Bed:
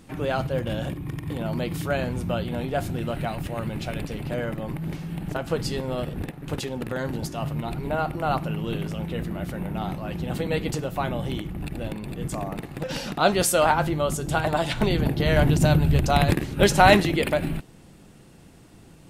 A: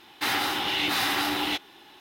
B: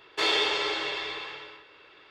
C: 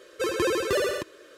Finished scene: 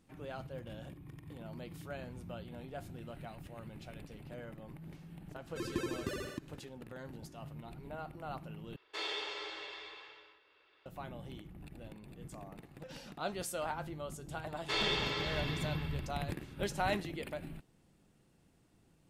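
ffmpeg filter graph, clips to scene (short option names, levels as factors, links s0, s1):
-filter_complex "[2:a]asplit=2[s0][s1];[0:a]volume=0.119[s2];[3:a]lowshelf=f=350:t=q:w=3:g=9.5[s3];[s0]equalizer=f=160:w=1.5:g=-9.5[s4];[s2]asplit=2[s5][s6];[s5]atrim=end=8.764[s7];[s4]atrim=end=2.1,asetpts=PTS-STARTPTS,volume=0.2[s8];[s6]atrim=start=10.856[s9];[s3]atrim=end=1.37,asetpts=PTS-STARTPTS,volume=0.188,afade=t=in:d=0.1,afade=t=out:st=1.27:d=0.1,adelay=5360[s10];[s1]atrim=end=2.1,asetpts=PTS-STARTPTS,volume=0.376,afade=t=in:d=0.004:c=hsin,afade=t=out:st=2.096:d=0.004:c=hsin,adelay=14510[s11];[s7][s8]acrossfade=d=0.004:c1=hsin:c2=hsin[s12];[s12][s9]acrossfade=d=0.004:c1=hsin:c2=hsin[s13];[s13][s10][s11]amix=inputs=3:normalize=0"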